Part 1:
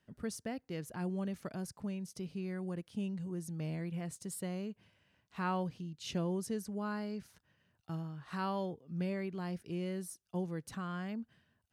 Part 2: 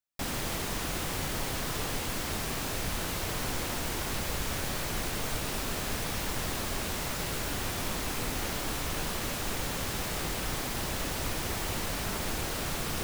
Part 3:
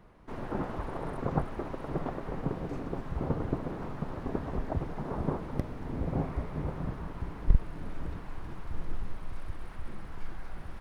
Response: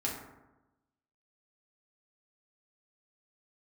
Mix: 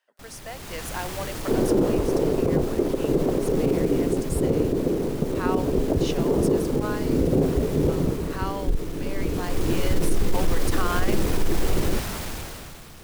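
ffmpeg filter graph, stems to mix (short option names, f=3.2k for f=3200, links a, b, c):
-filter_complex "[0:a]highpass=f=550:w=0.5412,highpass=f=550:w=1.3066,volume=2dB[a];[1:a]asoftclip=type=tanh:threshold=-30.5dB,volume=-11dB[b];[2:a]equalizer=f=420:t=o:w=2:g=14,lowshelf=f=580:t=q:w=1.5:g=6,adelay=1200,volume=-8.5dB[c];[a][b][c]amix=inputs=3:normalize=0,lowshelf=f=190:g=4,dynaudnorm=f=120:g=13:m=16.5dB,alimiter=limit=-12dB:level=0:latency=1:release=35"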